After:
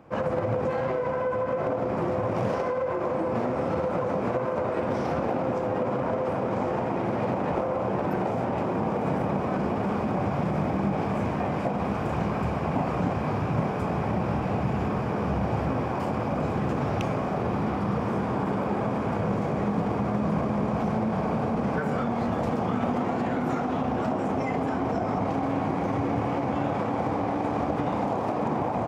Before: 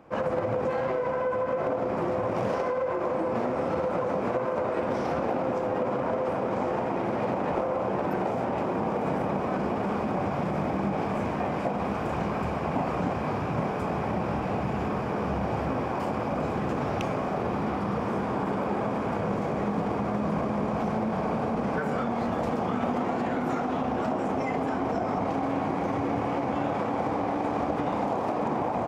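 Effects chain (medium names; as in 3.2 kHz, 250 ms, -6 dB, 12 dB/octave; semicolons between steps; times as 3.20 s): peaking EQ 110 Hz +5.5 dB 1.6 oct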